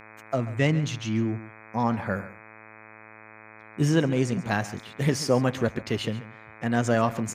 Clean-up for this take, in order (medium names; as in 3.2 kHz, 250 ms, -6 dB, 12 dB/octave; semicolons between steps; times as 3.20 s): de-hum 109.1 Hz, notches 23; inverse comb 136 ms -16 dB